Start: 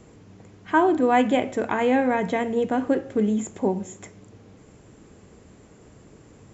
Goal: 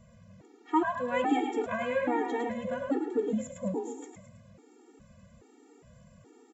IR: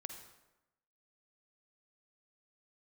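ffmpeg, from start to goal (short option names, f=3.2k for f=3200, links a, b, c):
-filter_complex "[0:a]asplit=6[a][b][c][d][e][f];[b]adelay=107,afreqshift=41,volume=-6dB[g];[c]adelay=214,afreqshift=82,volume=-12.9dB[h];[d]adelay=321,afreqshift=123,volume=-19.9dB[i];[e]adelay=428,afreqshift=164,volume=-26.8dB[j];[f]adelay=535,afreqshift=205,volume=-33.7dB[k];[a][g][h][i][j][k]amix=inputs=6:normalize=0,asplit=2[l][m];[1:a]atrim=start_sample=2205,lowpass=2.6k[n];[m][n]afir=irnorm=-1:irlink=0,volume=-9.5dB[o];[l][o]amix=inputs=2:normalize=0,afftfilt=real='re*gt(sin(2*PI*1.2*pts/sr)*(1-2*mod(floor(b*sr/1024/240),2)),0)':imag='im*gt(sin(2*PI*1.2*pts/sr)*(1-2*mod(floor(b*sr/1024/240),2)),0)':win_size=1024:overlap=0.75,volume=-6dB"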